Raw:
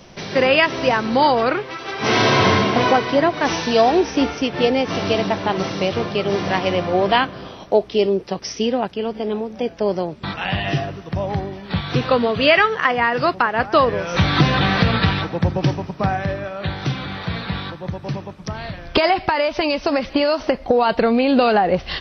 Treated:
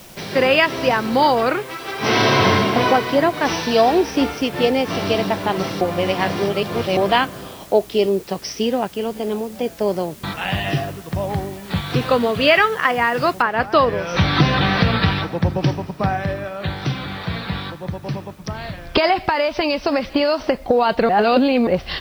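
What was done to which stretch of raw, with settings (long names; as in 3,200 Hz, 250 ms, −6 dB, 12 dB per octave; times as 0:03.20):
0:05.81–0:06.97: reverse
0:13.42: noise floor change −45 dB −57 dB
0:21.09–0:21.67: reverse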